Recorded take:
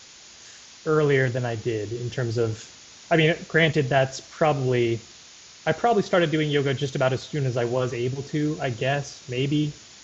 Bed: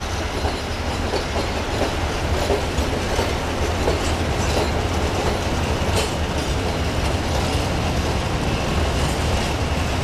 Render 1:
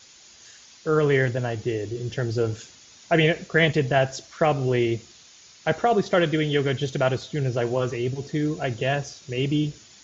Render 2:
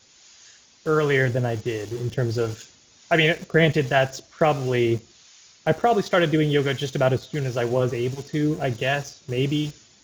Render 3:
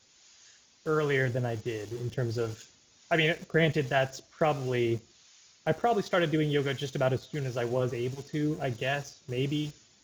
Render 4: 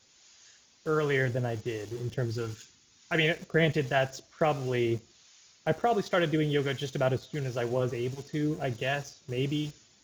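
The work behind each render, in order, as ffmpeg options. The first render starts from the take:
-af "afftdn=nr=6:nf=-47"
-filter_complex "[0:a]acrossover=split=760[a][b];[a]aeval=exprs='val(0)*(1-0.5/2+0.5/2*cos(2*PI*1.4*n/s))':c=same[c];[b]aeval=exprs='val(0)*(1-0.5/2-0.5/2*cos(2*PI*1.4*n/s))':c=same[d];[c][d]amix=inputs=2:normalize=0,asplit=2[e][f];[f]aeval=exprs='val(0)*gte(abs(val(0)),0.0168)':c=same,volume=-5dB[g];[e][g]amix=inputs=2:normalize=0"
-af "volume=-7dB"
-filter_complex "[0:a]asettb=1/sr,asplit=3[a][b][c];[a]atrim=end=2.254[d];[b]atrim=start=2.25:end=3.15,asetpts=PTS-STARTPTS,afade=t=in:d=0.004:c=qsin,afade=t=out:st=0.896:d=0.004:c=qsin,equalizer=f=600:w=2.8:g=-14[e];[c]atrim=start=3.146[f];[d][e]acrossfade=d=0.004:c1=hsin:c2=qsin[g];[g][f]acrossfade=d=0.004:c1=qsin:c2=hsin"

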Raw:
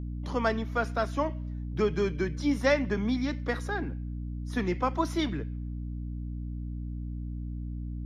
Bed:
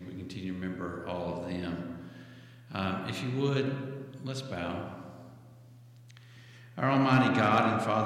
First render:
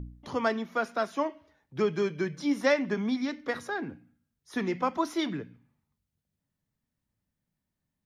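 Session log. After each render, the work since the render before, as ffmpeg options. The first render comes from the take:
-af "bandreject=f=60:t=h:w=4,bandreject=f=120:t=h:w=4,bandreject=f=180:t=h:w=4,bandreject=f=240:t=h:w=4,bandreject=f=300:t=h:w=4"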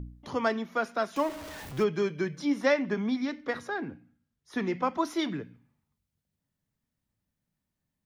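-filter_complex "[0:a]asettb=1/sr,asplit=3[a][b][c];[a]atrim=end=1.164[d];[b]atrim=start=1.16:end=1.84,asetpts=PTS-STARTPTS,afade=t=in:d=0.004:c=qsin,afade=t=out:st=0.676:d=0.004:c=qsin,aeval=exprs='val(0)+0.5*0.015*sgn(val(0))':c=same[e];[c]atrim=start=1.836[f];[d][e]acrossfade=d=0.004:c1=hsin:c2=qsin[g];[g][f]acrossfade=d=0.004:c1=qsin:c2=hsin,asettb=1/sr,asplit=3[h][i][j];[h]atrim=end=2.454[k];[i]atrim=start=2.45:end=4.99,asetpts=PTS-STARTPTS,afade=t=in:d=0.004:c=qsin,afade=t=out:st=2.536:d=0.004:c=qsin,highshelf=f=7.2k:g=-7.5[l];[j]atrim=start=4.986[m];[k][l]acrossfade=d=0.004:c1=hsin:c2=qsin[n];[n][m]acrossfade=d=0.004:c1=qsin:c2=hsin"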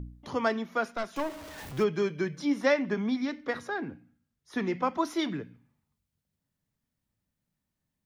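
-filter_complex "[0:a]asettb=1/sr,asplit=3[a][b][c];[a]atrim=end=0.914[d];[b]atrim=start=0.91:end=1.58,asetpts=PTS-STARTPTS,afade=t=in:d=0.004:c=qsin,afade=t=out:st=0.666:d=0.004:c=qsin,aeval=exprs='(tanh(17.8*val(0)+0.55)-tanh(0.55))/17.8':c=same[e];[c]atrim=start=1.576[f];[d][e]acrossfade=d=0.004:c1=hsin:c2=qsin[g];[g][f]acrossfade=d=0.004:c1=qsin:c2=hsin"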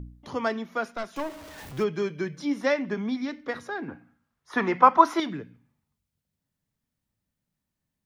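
-filter_complex "[0:a]asettb=1/sr,asplit=3[a][b][c];[a]atrim=end=3.884[d];[b]atrim=start=3.88:end=5.2,asetpts=PTS-STARTPTS,afade=t=in:d=0.004:c=qsin,afade=t=out:st=1.316:d=0.004:c=qsin,equalizer=f=1.1k:t=o:w=2:g=15[e];[c]atrim=start=5.196[f];[d][e]acrossfade=d=0.004:c1=hsin:c2=qsin[g];[g][f]acrossfade=d=0.004:c1=qsin:c2=hsin"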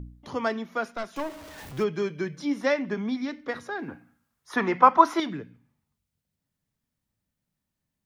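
-filter_complex "[0:a]asettb=1/sr,asplit=3[a][b][c];[a]atrim=end=3.794[d];[b]atrim=start=3.79:end=4.56,asetpts=PTS-STARTPTS,afade=t=in:d=0.004:c=qsin,afade=t=out:st=0.766:d=0.004:c=qsin,aemphasis=mode=production:type=cd[e];[c]atrim=start=4.556[f];[d][e]acrossfade=d=0.004:c1=hsin:c2=qsin[g];[g][f]acrossfade=d=0.004:c1=qsin:c2=hsin"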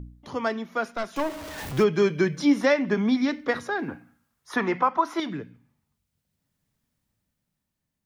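-af "dynaudnorm=f=290:g=9:m=9dB,alimiter=limit=-11dB:level=0:latency=1:release=376"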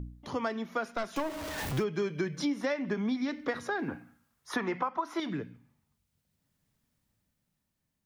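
-af "acompressor=threshold=-29dB:ratio=5"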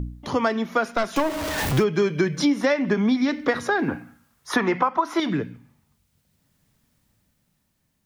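-af "volume=10.5dB"

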